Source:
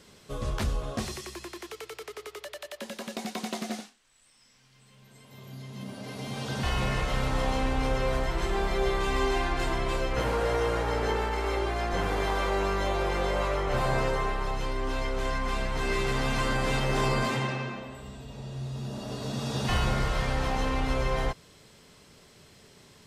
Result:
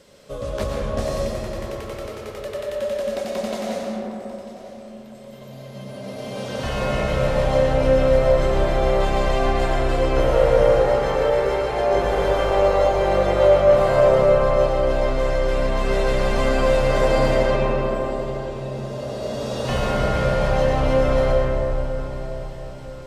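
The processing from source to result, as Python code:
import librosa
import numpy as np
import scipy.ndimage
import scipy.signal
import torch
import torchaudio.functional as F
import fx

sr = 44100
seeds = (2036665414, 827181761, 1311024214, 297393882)

y = fx.peak_eq(x, sr, hz=560.0, db=14.0, octaves=0.35)
y = fx.echo_feedback(y, sr, ms=945, feedback_pct=56, wet_db=-17.0)
y = fx.rev_freeverb(y, sr, rt60_s=3.9, hf_ratio=0.25, predelay_ms=75, drr_db=-2.5)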